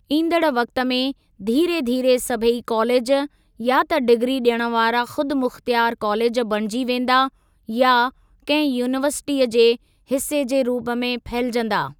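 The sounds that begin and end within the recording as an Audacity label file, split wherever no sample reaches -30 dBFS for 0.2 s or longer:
1.410000	3.260000	sound
3.600000	7.280000	sound
7.690000	8.090000	sound
8.480000	9.750000	sound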